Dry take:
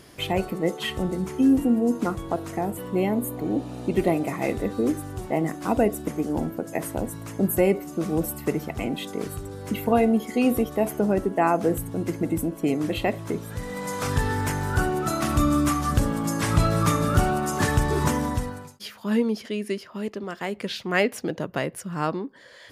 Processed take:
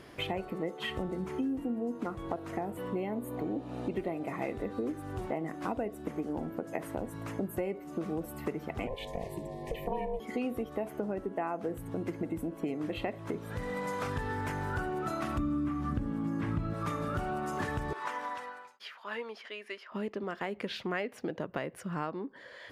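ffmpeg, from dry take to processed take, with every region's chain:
-filter_complex "[0:a]asettb=1/sr,asplit=3[a][b][c];[a]atrim=end=8.874[d];[b]atrim=start=8.87:end=10.2,asetpts=PTS-STARTPTS,afade=t=in:d=0.004:c=qsin,afade=t=out:st=1.326:d=0.004:c=qsin,aeval=exprs='val(0)*sin(2*PI*250*n/s)':c=same,asuperstop=centerf=1400:order=20:qfactor=2.3[e];[c]atrim=start=10.196[f];[d][e]acrossfade=d=0.004:c1=hsin:c2=qsin[g];[g][f]acrossfade=d=0.004:c1=qsin:c2=hsin,asettb=1/sr,asplit=3[h][i][j];[h]atrim=end=15.384[k];[i]atrim=start=15.38:end=16.74,asetpts=PTS-STARTPTS,afade=t=in:d=0.004:c=qsin,afade=t=out:st=1.356:d=0.004:c=qsin,acrossover=split=3100[l][m];[m]acompressor=threshold=-43dB:ratio=4:attack=1:release=60[n];[l][n]amix=inputs=2:normalize=0,lowshelf=f=390:t=q:w=1.5:g=7.5[o];[j]atrim=start=16.736[p];[k][o]acrossfade=d=0.004:c1=hsin:c2=qsin[q];[q][p]acrossfade=d=0.004:c1=qsin:c2=hsin,asettb=1/sr,asplit=3[r][s][t];[r]atrim=end=17.934[u];[s]atrim=start=17.93:end=19.92,asetpts=PTS-STARTPTS,afade=t=in:d=0.004:c=qsin,afade=t=out:st=1.986:d=0.004:c=qsin,highpass=950,aemphasis=mode=reproduction:type=50kf[v];[t]atrim=start=19.916[w];[u][v]acrossfade=d=0.004:c1=hsin:c2=qsin[x];[x][w]acrossfade=d=0.004:c1=qsin:c2=hsin,bass=f=250:g=-4,treble=f=4k:g=-12,acompressor=threshold=-32dB:ratio=5"

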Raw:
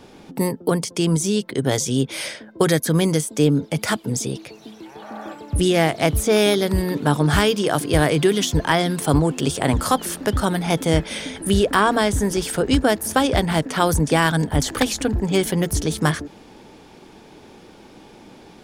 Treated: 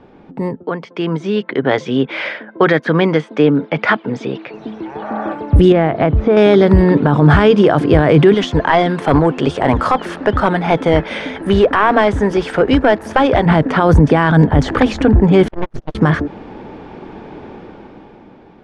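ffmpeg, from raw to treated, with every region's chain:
-filter_complex "[0:a]asettb=1/sr,asplit=3[a][b][c];[a]atrim=end=0.634[d];[b]atrim=start=0.63:end=4.54,asetpts=PTS-STARTPTS,afade=t=in:d=0.004:c=qsin,afade=t=out:st=3.906:d=0.004:c=qsin,highpass=190,lowpass=2.8k,tiltshelf=f=1.1k:g=-6.5[e];[c]atrim=start=4.536[f];[d][e]acrossfade=d=0.004:c1=hsin:c2=qsin[g];[g][f]acrossfade=d=0.004:c1=qsin:c2=hsin,asettb=1/sr,asplit=3[h][i][j];[h]atrim=end=5.724[k];[i]atrim=start=5.72:end=6.37,asetpts=PTS-STARTPTS,afade=t=in:d=0.004:c=qsin,afade=t=out:st=0.646:d=0.004:c=qsin,lowpass=f=4.8k:w=0.5412,lowpass=f=4.8k:w=1.3066,aemphasis=mode=reproduction:type=75kf,acompressor=threshold=-21dB:ratio=4:attack=3.2:release=140:knee=1:detection=peak[l];[j]atrim=start=6.366[m];[k][l]acrossfade=d=0.004:c1=hsin:c2=qsin[n];[n][m]acrossfade=d=0.004:c1=qsin:c2=hsin,asettb=1/sr,asplit=3[o][p][q];[o]atrim=end=8.344[r];[p]atrim=start=8.34:end=13.46,asetpts=PTS-STARTPTS,afade=t=in:d=0.004:c=qsin,afade=t=out:st=5.116:d=0.004:c=qsin,lowshelf=f=330:g=-10.5,aeval=exprs='clip(val(0),-1,0.15)':c=same[s];[q]atrim=start=13.456[t];[r][s]acrossfade=d=0.004:c1=hsin:c2=qsin[u];[u][t]acrossfade=d=0.004:c1=qsin:c2=hsin,asettb=1/sr,asplit=3[v][w][x];[v]atrim=end=15.484[y];[w]atrim=start=15.48:end=15.95,asetpts=PTS-STARTPTS,afade=t=in:d=0.004:c=qsin,afade=t=out:st=0.466:d=0.004:c=qsin,agate=range=-38dB:threshold=-18dB:ratio=16:release=100:detection=peak,aeval=exprs='abs(val(0))':c=same[z];[x]atrim=start=15.946[aa];[y][z]acrossfade=d=0.004:c1=hsin:c2=qsin[ab];[ab][aa]acrossfade=d=0.004:c1=qsin:c2=hsin,lowpass=1.8k,alimiter=limit=-13.5dB:level=0:latency=1:release=23,dynaudnorm=f=130:g=17:m=13dB,volume=1.5dB"

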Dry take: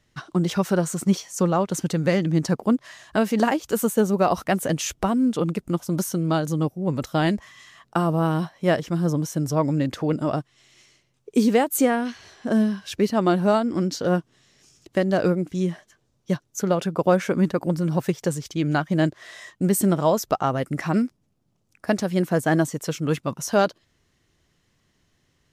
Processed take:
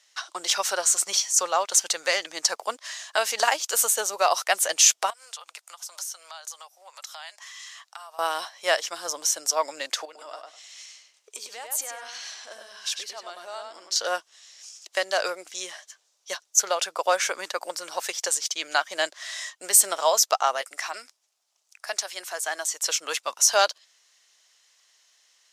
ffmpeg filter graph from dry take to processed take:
-filter_complex "[0:a]asettb=1/sr,asplit=3[a][b][c];[a]atrim=end=5.104[d];[b]atrim=start=5.1:end=8.19,asetpts=PTS-STARTPTS,afade=t=in:d=0.004:c=qsin,afade=t=out:st=3.086:d=0.004:c=qsin,highpass=f=710:w=0.5412,highpass=f=710:w=1.3066,acompressor=threshold=-46dB:ratio=3:attack=3.2:release=140:knee=1:detection=peak[e];[c]atrim=start=8.186[f];[d][e]acrossfade=d=0.004:c1=hsin:c2=qsin[g];[g][f]acrossfade=d=0.004:c1=qsin:c2=hsin,asettb=1/sr,asplit=3[h][i][j];[h]atrim=end=10.054[k];[i]atrim=start=10.05:end=13.96,asetpts=PTS-STARTPTS,afade=t=in:d=0.004:c=qsin,afade=t=out:st=3.906:d=0.004:c=qsin,acompressor=threshold=-35dB:ratio=4:attack=3.2:release=140:knee=1:detection=peak,asplit=2[l][m];[m]adelay=100,lowpass=f=4.2k:p=1,volume=-3.5dB,asplit=2[n][o];[o]adelay=100,lowpass=f=4.2k:p=1,volume=0.21,asplit=2[p][q];[q]adelay=100,lowpass=f=4.2k:p=1,volume=0.21[r];[l][n][p][r]amix=inputs=4:normalize=0,atrim=end_sample=172431[s];[j]atrim=start=13.956[t];[k][s]acrossfade=d=0.004:c1=hsin:c2=qsin[u];[u][t]acrossfade=d=0.004:c1=qsin:c2=hsin,asettb=1/sr,asplit=3[v][w][x];[v]atrim=end=20.614[y];[w]atrim=start=20.61:end=22.86,asetpts=PTS-STARTPTS,afade=t=in:d=0.004:c=qsin,afade=t=out:st=2.246:d=0.004:c=qsin,lowshelf=f=220:g=-10.5,bandreject=f=520:w=7.9,acompressor=threshold=-36dB:ratio=1.5:attack=3.2:release=140:knee=1:detection=peak[z];[x]atrim=start=22.856[aa];[y][z]acrossfade=d=0.004:c1=hsin:c2=qsin[ab];[ab][aa]acrossfade=d=0.004:c1=qsin:c2=hsin,highpass=f=620:w=0.5412,highpass=f=620:w=1.3066,equalizer=f=6.2k:w=0.48:g=13.5"

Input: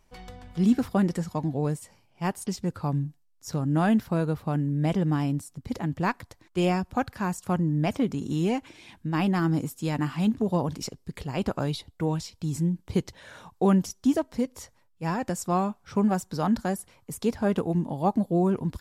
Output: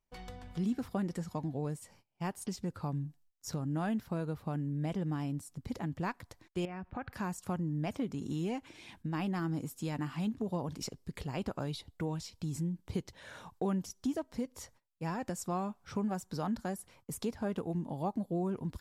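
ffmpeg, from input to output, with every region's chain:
-filter_complex "[0:a]asettb=1/sr,asplit=3[a][b][c];[a]atrim=end=6.654[d];[b]atrim=start=6.65:end=7.13,asetpts=PTS-STARTPTS,afade=t=in:d=0.004:c=qsin,afade=t=out:st=0.476:d=0.004:c=qsin,agate=range=-33dB:threshold=-47dB:ratio=3:release=100:detection=peak,acompressor=threshold=-34dB:ratio=3:attack=3.2:release=140:knee=1:detection=peak,lowpass=f=2.1k:t=q:w=1.7[e];[c]atrim=start=7.126[f];[d][e]acrossfade=d=0.004:c1=hsin:c2=qsin[g];[g][f]acrossfade=d=0.004:c1=qsin:c2=hsin,agate=range=-19dB:threshold=-56dB:ratio=16:detection=peak,acompressor=threshold=-34dB:ratio=2,volume=-3dB"

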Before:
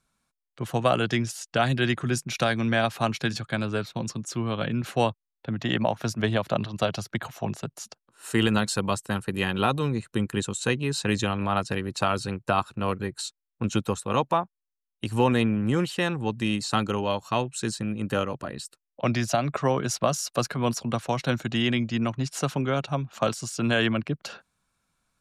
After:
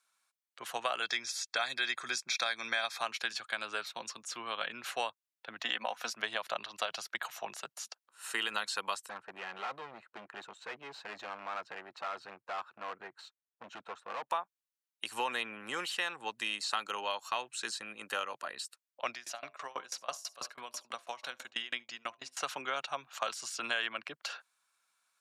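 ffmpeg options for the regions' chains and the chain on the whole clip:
-filter_complex "[0:a]asettb=1/sr,asplit=3[a][b][c];[a]atrim=end=1.024[d];[b]atrim=start=1.02:end=3.01,asetpts=PTS-STARTPTS,afade=t=in:d=0.004:c=qsin,afade=t=out:st=1.986:d=0.004:c=qsin,asuperstop=centerf=2900:order=20:qfactor=6.4,equalizer=f=5.2k:w=0.75:g=8[e];[c]atrim=start=3.006[f];[d][e]acrossfade=d=0.004:c1=hsin:c2=qsin[g];[g][f]acrossfade=d=0.004:c1=qsin:c2=hsin,asettb=1/sr,asplit=3[h][i][j];[h]atrim=end=5.634[k];[i]atrim=start=5.63:end=6.13,asetpts=PTS-STARTPTS,afade=t=in:d=0.004:c=qsin,afade=t=out:st=0.496:d=0.004:c=qsin,highpass=59,aecho=1:1:4:0.53,atrim=end_sample=22050[l];[j]atrim=start=6.126[m];[k][l]acrossfade=d=0.004:c1=hsin:c2=qsin[n];[n][m]acrossfade=d=0.004:c1=qsin:c2=hsin,asettb=1/sr,asplit=3[o][p][q];[o]atrim=end=9.094[r];[p]atrim=start=9.09:end=14.3,asetpts=PTS-STARTPTS,afade=t=in:d=0.004:c=qsin,afade=t=out:st=5.206:d=0.004:c=qsin,asoftclip=type=hard:threshold=-27.5dB,highshelf=f=2.3k:g=-11.5,adynamicsmooth=sensitivity=3.5:basefreq=2.8k[s];[q]atrim=start=14.296[t];[r][s]acrossfade=d=0.004:c1=hsin:c2=qsin[u];[u][t]acrossfade=d=0.004:c1=qsin:c2=hsin,asettb=1/sr,asplit=3[v][w][x];[v]atrim=end=19.104[y];[w]atrim=start=19.1:end=22.37,asetpts=PTS-STARTPTS,afade=t=in:d=0.004:c=qsin,afade=t=out:st=3.266:d=0.004:c=qsin,bandreject=f=86.19:t=h:w=4,bandreject=f=172.38:t=h:w=4,bandreject=f=258.57:t=h:w=4,bandreject=f=344.76:t=h:w=4,bandreject=f=430.95:t=h:w=4,bandreject=f=517.14:t=h:w=4,bandreject=f=603.33:t=h:w=4,bandreject=f=689.52:t=h:w=4,bandreject=f=775.71:t=h:w=4,bandreject=f=861.9:t=h:w=4,bandreject=f=948.09:t=h:w=4,bandreject=f=1.03428k:t=h:w=4,bandreject=f=1.12047k:t=h:w=4,aecho=1:1:70:0.106,atrim=end_sample=144207,aeval=exprs='val(0)*pow(10,-26*if(lt(mod(6.1*n/s,1),2*abs(6.1)/1000),1-mod(6.1*n/s,1)/(2*abs(6.1)/1000),(mod(6.1*n/s,1)-2*abs(6.1)/1000)/(1-2*abs(6.1)/1000))/20)':c=same[z];[x]atrim=start=22.366[aa];[y][z]acrossfade=d=0.004:c1=hsin:c2=qsin[ab];[ab][aa]acrossfade=d=0.004:c1=qsin:c2=hsin,acrossover=split=4900[ac][ad];[ad]acompressor=threshold=-41dB:ratio=4:attack=1:release=60[ae];[ac][ae]amix=inputs=2:normalize=0,highpass=990,acompressor=threshold=-31dB:ratio=3"

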